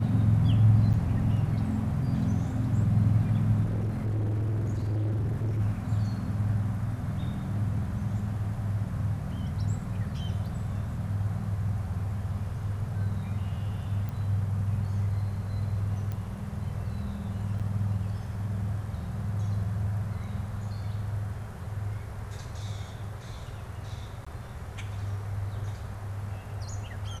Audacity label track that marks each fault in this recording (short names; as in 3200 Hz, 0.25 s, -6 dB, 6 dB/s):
0.930000	0.940000	gap 8 ms
3.640000	5.610000	clipped -26 dBFS
14.090000	14.090000	pop
16.120000	16.120000	pop -24 dBFS
17.590000	17.600000	gap 7 ms
24.250000	24.270000	gap 15 ms